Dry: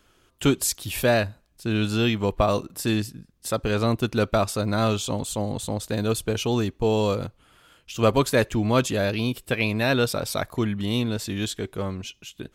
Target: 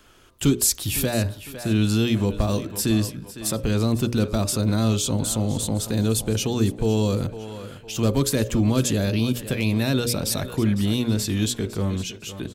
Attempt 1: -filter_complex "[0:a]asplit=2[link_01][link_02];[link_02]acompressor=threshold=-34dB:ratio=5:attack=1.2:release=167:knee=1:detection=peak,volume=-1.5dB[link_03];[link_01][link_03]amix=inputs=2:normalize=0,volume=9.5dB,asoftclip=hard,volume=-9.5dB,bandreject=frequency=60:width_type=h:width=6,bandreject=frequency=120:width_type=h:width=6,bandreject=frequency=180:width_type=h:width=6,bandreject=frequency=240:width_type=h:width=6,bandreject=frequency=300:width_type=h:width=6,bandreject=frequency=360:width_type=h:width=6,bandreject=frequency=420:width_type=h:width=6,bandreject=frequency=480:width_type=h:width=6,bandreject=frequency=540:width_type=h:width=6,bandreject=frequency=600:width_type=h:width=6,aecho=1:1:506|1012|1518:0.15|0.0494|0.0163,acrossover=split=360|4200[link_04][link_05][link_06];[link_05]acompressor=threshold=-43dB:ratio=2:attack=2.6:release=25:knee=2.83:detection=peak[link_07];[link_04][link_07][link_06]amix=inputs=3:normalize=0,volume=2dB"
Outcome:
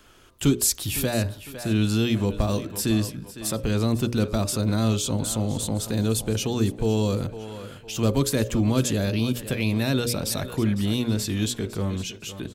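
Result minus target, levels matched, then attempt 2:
downward compressor: peak gain reduction +8.5 dB
-filter_complex "[0:a]asplit=2[link_01][link_02];[link_02]acompressor=threshold=-23.5dB:ratio=5:attack=1.2:release=167:knee=1:detection=peak,volume=-1.5dB[link_03];[link_01][link_03]amix=inputs=2:normalize=0,volume=9.5dB,asoftclip=hard,volume=-9.5dB,bandreject=frequency=60:width_type=h:width=6,bandreject=frequency=120:width_type=h:width=6,bandreject=frequency=180:width_type=h:width=6,bandreject=frequency=240:width_type=h:width=6,bandreject=frequency=300:width_type=h:width=6,bandreject=frequency=360:width_type=h:width=6,bandreject=frequency=420:width_type=h:width=6,bandreject=frequency=480:width_type=h:width=6,bandreject=frequency=540:width_type=h:width=6,bandreject=frequency=600:width_type=h:width=6,aecho=1:1:506|1012|1518:0.15|0.0494|0.0163,acrossover=split=360|4200[link_04][link_05][link_06];[link_05]acompressor=threshold=-43dB:ratio=2:attack=2.6:release=25:knee=2.83:detection=peak[link_07];[link_04][link_07][link_06]amix=inputs=3:normalize=0,volume=2dB"

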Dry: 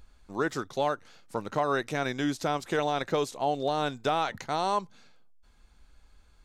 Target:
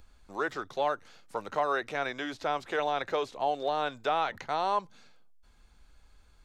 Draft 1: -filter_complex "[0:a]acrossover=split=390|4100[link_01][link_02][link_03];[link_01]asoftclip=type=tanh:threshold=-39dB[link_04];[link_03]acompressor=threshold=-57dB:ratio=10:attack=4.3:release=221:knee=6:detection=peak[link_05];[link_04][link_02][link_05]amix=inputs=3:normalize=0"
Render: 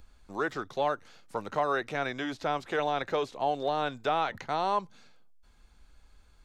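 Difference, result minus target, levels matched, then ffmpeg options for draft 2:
soft clipping: distortion −5 dB
-filter_complex "[0:a]acrossover=split=390|4100[link_01][link_02][link_03];[link_01]asoftclip=type=tanh:threshold=-48dB[link_04];[link_03]acompressor=threshold=-57dB:ratio=10:attack=4.3:release=221:knee=6:detection=peak[link_05];[link_04][link_02][link_05]amix=inputs=3:normalize=0"

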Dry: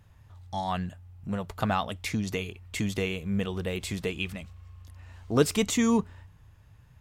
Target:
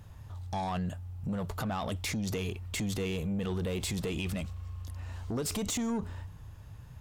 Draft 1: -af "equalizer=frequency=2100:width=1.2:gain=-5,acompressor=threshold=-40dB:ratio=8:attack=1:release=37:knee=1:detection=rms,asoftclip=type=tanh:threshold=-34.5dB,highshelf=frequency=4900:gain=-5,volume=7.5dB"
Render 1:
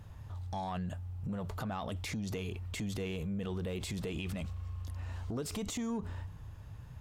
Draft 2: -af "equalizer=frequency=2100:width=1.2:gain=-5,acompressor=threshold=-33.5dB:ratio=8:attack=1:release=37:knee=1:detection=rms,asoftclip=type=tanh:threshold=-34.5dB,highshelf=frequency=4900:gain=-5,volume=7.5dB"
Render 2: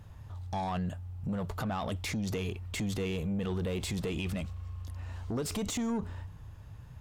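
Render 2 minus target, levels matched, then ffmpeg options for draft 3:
8,000 Hz band −3.0 dB
-af "equalizer=frequency=2100:width=1.2:gain=-5,acompressor=threshold=-33.5dB:ratio=8:attack=1:release=37:knee=1:detection=rms,asoftclip=type=tanh:threshold=-34.5dB,volume=7.5dB"

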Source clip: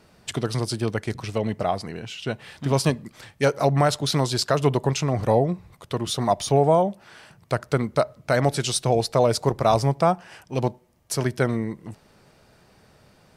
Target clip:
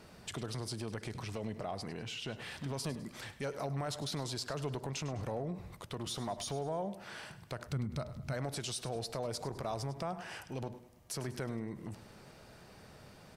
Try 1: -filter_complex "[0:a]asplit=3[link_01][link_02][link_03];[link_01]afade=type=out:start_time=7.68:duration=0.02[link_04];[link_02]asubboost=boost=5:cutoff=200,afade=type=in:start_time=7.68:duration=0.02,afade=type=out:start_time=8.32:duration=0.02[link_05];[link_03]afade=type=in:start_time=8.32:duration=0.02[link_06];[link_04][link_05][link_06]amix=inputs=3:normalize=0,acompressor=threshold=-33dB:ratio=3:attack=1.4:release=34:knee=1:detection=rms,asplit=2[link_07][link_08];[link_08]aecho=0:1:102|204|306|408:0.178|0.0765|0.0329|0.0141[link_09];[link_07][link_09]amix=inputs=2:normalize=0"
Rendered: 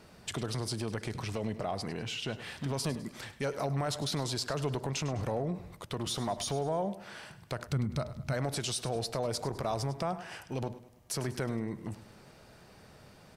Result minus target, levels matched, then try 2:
downward compressor: peak gain reduction −5 dB
-filter_complex "[0:a]asplit=3[link_01][link_02][link_03];[link_01]afade=type=out:start_time=7.68:duration=0.02[link_04];[link_02]asubboost=boost=5:cutoff=200,afade=type=in:start_time=7.68:duration=0.02,afade=type=out:start_time=8.32:duration=0.02[link_05];[link_03]afade=type=in:start_time=8.32:duration=0.02[link_06];[link_04][link_05][link_06]amix=inputs=3:normalize=0,acompressor=threshold=-40.5dB:ratio=3:attack=1.4:release=34:knee=1:detection=rms,asplit=2[link_07][link_08];[link_08]aecho=0:1:102|204|306|408:0.178|0.0765|0.0329|0.0141[link_09];[link_07][link_09]amix=inputs=2:normalize=0"

